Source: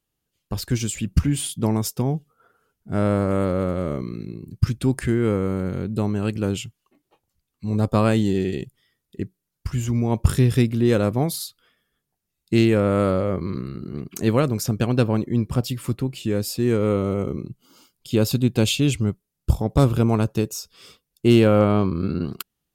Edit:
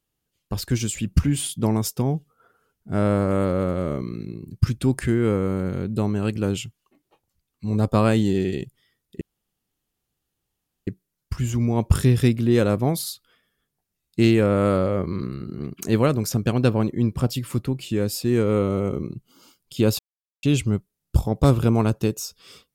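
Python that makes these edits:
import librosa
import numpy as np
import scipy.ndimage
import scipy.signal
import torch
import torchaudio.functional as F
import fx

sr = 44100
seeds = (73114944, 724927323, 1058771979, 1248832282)

y = fx.edit(x, sr, fx.insert_room_tone(at_s=9.21, length_s=1.66),
    fx.silence(start_s=18.33, length_s=0.44), tone=tone)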